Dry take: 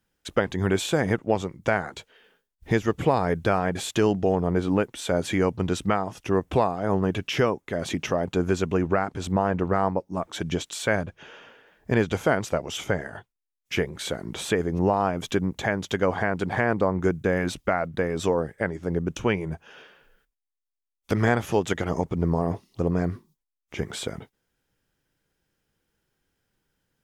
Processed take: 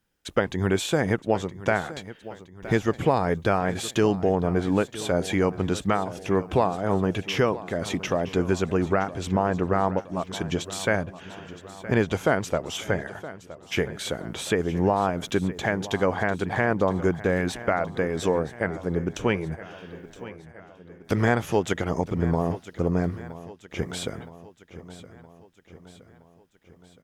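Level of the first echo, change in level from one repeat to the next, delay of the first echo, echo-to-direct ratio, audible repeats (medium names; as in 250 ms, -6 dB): -16.0 dB, -5.5 dB, 968 ms, -14.5 dB, 4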